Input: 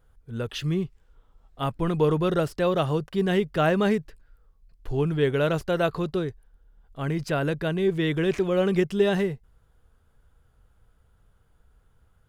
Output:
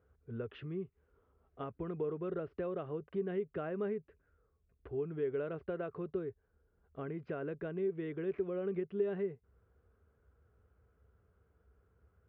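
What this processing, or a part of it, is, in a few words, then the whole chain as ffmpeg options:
bass amplifier: -af "acompressor=threshold=-34dB:ratio=4,highpass=frequency=63:width=0.5412,highpass=frequency=63:width=1.3066,equalizer=frequency=66:width_type=q:width=4:gain=5,equalizer=frequency=140:width_type=q:width=4:gain=-6,equalizer=frequency=410:width_type=q:width=4:gain=8,equalizer=frequency=880:width_type=q:width=4:gain=-7,equalizer=frequency=1800:width_type=q:width=4:gain=-4,lowpass=frequency=2200:width=0.5412,lowpass=frequency=2200:width=1.3066,volume=-5dB"

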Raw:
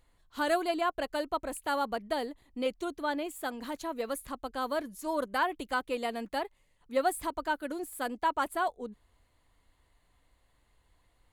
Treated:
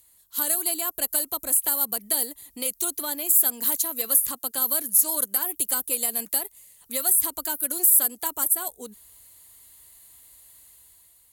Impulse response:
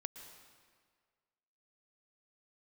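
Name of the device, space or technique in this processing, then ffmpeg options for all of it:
FM broadcast chain: -filter_complex "[0:a]asettb=1/sr,asplit=3[link_01][link_02][link_03];[link_01]atrim=end=4.314[link_04];[link_02]atrim=start=4.31:end=5.21,asetpts=PTS-STARTPTS,afade=type=in:duration=0.004:curve=qsin,afade=type=out:start_time=0.896:duration=0.004:curve=qsin,highpass=120[link_05];[link_03]atrim=start=5.206[link_06];[link_04][link_05]acrossfade=duration=0.004:curve1=hsin:curve2=qsin[link_07];[link_07][link_06]acrossfade=duration=0.004:curve1=qsin:curve2=hsin,highpass=51,dynaudnorm=framelen=190:gausssize=7:maxgain=7dB,acrossover=split=420|1300|6400[link_08][link_09][link_10][link_11];[link_08]acompressor=threshold=-37dB:ratio=4[link_12];[link_09]acompressor=threshold=-35dB:ratio=4[link_13];[link_10]acompressor=threshold=-43dB:ratio=4[link_14];[link_11]acompressor=threshold=-40dB:ratio=4[link_15];[link_12][link_13][link_14][link_15]amix=inputs=4:normalize=0,aemphasis=mode=production:type=75fm,alimiter=limit=-18dB:level=0:latency=1:release=171,asoftclip=type=hard:threshold=-20dB,lowpass=frequency=15000:width=0.5412,lowpass=frequency=15000:width=1.3066,aemphasis=mode=production:type=75fm,volume=-2.5dB"

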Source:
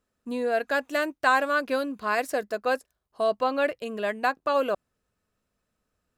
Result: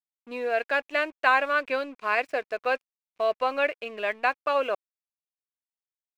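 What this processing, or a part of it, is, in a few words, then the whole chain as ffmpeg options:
pocket radio on a weak battery: -af "highpass=390,lowpass=3900,aeval=exprs='sgn(val(0))*max(abs(val(0))-0.00266,0)':channel_layout=same,equalizer=frequency=2400:width_type=o:width=0.44:gain=10"

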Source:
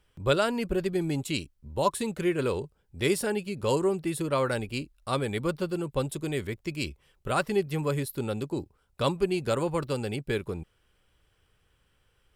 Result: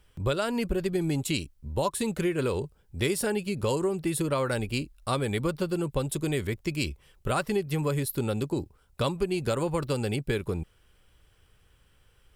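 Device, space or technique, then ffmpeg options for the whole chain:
ASMR close-microphone chain: -af "lowshelf=frequency=110:gain=5,acompressor=threshold=-27dB:ratio=6,highshelf=frequency=6100:gain=4,volume=3.5dB"

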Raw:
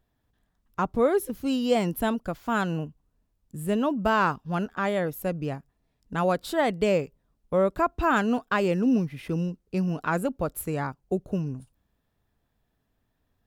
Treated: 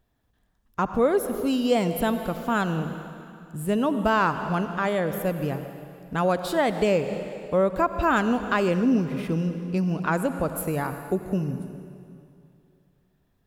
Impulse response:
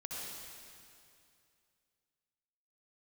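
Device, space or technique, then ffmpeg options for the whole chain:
ducked reverb: -filter_complex "[0:a]asplit=3[link_01][link_02][link_03];[1:a]atrim=start_sample=2205[link_04];[link_02][link_04]afir=irnorm=-1:irlink=0[link_05];[link_03]apad=whole_len=593595[link_06];[link_05][link_06]sidechaincompress=threshold=-26dB:ratio=4:attack=28:release=232,volume=-5dB[link_07];[link_01][link_07]amix=inputs=2:normalize=0"

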